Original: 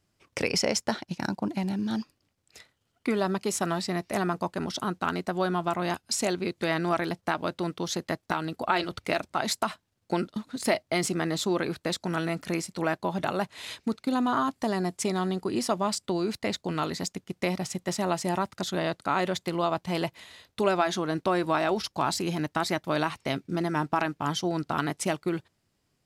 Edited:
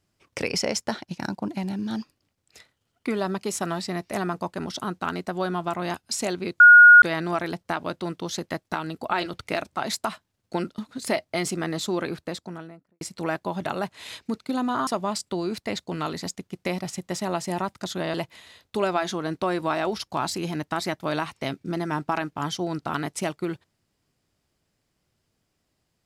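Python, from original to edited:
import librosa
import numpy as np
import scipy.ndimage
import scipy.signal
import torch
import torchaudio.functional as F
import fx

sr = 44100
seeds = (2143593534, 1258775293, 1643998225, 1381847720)

y = fx.studio_fade_out(x, sr, start_s=11.59, length_s=1.0)
y = fx.edit(y, sr, fx.insert_tone(at_s=6.6, length_s=0.42, hz=1440.0, db=-6.5),
    fx.cut(start_s=14.45, length_s=1.19),
    fx.cut(start_s=18.91, length_s=1.07), tone=tone)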